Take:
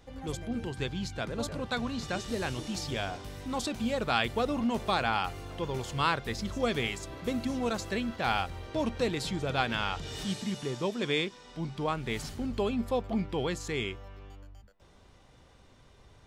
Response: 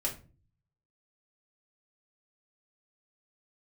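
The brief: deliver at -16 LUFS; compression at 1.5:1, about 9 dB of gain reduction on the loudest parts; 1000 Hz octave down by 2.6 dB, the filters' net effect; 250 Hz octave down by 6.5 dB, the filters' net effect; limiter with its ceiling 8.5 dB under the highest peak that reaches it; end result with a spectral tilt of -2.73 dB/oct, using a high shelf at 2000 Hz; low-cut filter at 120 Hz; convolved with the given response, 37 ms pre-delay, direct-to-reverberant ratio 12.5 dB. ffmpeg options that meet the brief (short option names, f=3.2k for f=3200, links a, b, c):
-filter_complex "[0:a]highpass=120,equalizer=f=250:t=o:g=-7.5,equalizer=f=1k:t=o:g=-5.5,highshelf=f=2k:g=8.5,acompressor=threshold=-47dB:ratio=1.5,alimiter=level_in=2.5dB:limit=-24dB:level=0:latency=1,volume=-2.5dB,asplit=2[a][b];[1:a]atrim=start_sample=2205,adelay=37[c];[b][c]afir=irnorm=-1:irlink=0,volume=-16.5dB[d];[a][d]amix=inputs=2:normalize=0,volume=24dB"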